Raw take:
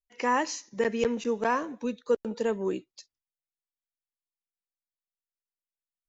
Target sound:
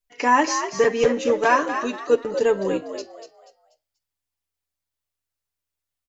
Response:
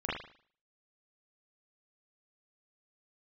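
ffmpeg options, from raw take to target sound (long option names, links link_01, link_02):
-filter_complex "[0:a]asettb=1/sr,asplit=3[link_01][link_02][link_03];[link_01]atrim=end=1.384[link_04];[link_02]atrim=start=1.38:end=1.98,asetpts=PTS-STARTPTS,afade=type=in:duration=0.004:curve=qsin,afade=type=out:start_time=0.596:duration=0.004:curve=qsin,tiltshelf=frequency=700:gain=-4[link_05];[link_03]atrim=start=1.976[link_06];[link_04][link_05]acrossfade=duration=0.004:curve1=hsin:curve2=qsin[link_07];[link_07][link_06]acrossfade=duration=0.004:curve1=qsin:curve2=hsin,aecho=1:1:6.9:0.75,bandreject=frequency=264:width_type=h:width=4,bandreject=frequency=528:width_type=h:width=4,bandreject=frequency=792:width_type=h:width=4,bandreject=frequency=1056:width_type=h:width=4,bandreject=frequency=1320:width_type=h:width=4,bandreject=frequency=1584:width_type=h:width=4,bandreject=frequency=1848:width_type=h:width=4,bandreject=frequency=2112:width_type=h:width=4,bandreject=frequency=2376:width_type=h:width=4,bandreject=frequency=2640:width_type=h:width=4,bandreject=frequency=2904:width_type=h:width=4,bandreject=frequency=3168:width_type=h:width=4,bandreject=frequency=3432:width_type=h:width=4,bandreject=frequency=3696:width_type=h:width=4,bandreject=frequency=3960:width_type=h:width=4,bandreject=frequency=4224:width_type=h:width=4,bandreject=frequency=4488:width_type=h:width=4,bandreject=frequency=4752:width_type=h:width=4,bandreject=frequency=5016:width_type=h:width=4,bandreject=frequency=5280:width_type=h:width=4,bandreject=frequency=5544:width_type=h:width=4,asplit=5[link_08][link_09][link_10][link_11][link_12];[link_09]adelay=242,afreqshift=77,volume=-9dB[link_13];[link_10]adelay=484,afreqshift=154,volume=-18.6dB[link_14];[link_11]adelay=726,afreqshift=231,volume=-28.3dB[link_15];[link_12]adelay=968,afreqshift=308,volume=-37.9dB[link_16];[link_08][link_13][link_14][link_15][link_16]amix=inputs=5:normalize=0,asplit=2[link_17][link_18];[1:a]atrim=start_sample=2205,asetrate=66150,aresample=44100[link_19];[link_18][link_19]afir=irnorm=-1:irlink=0,volume=-21dB[link_20];[link_17][link_20]amix=inputs=2:normalize=0,volume=5.5dB"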